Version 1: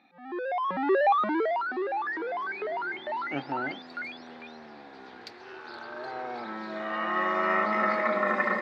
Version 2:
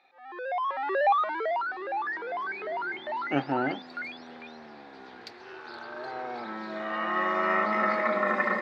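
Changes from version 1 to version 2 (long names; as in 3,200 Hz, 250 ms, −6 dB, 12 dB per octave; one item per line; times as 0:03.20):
speech +6.5 dB
first sound: add high-pass filter 500 Hz 24 dB per octave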